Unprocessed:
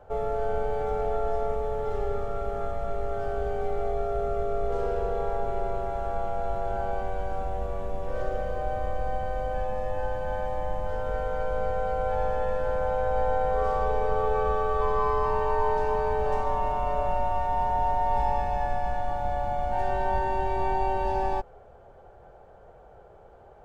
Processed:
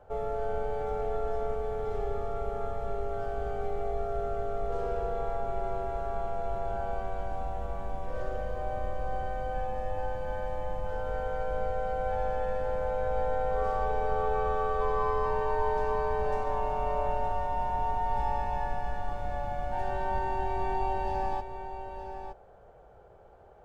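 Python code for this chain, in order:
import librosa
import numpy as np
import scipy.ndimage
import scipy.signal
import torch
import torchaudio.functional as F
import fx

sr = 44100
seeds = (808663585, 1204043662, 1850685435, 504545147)

y = x + 10.0 ** (-9.5 / 20.0) * np.pad(x, (int(916 * sr / 1000.0), 0))[:len(x)]
y = y * librosa.db_to_amplitude(-4.0)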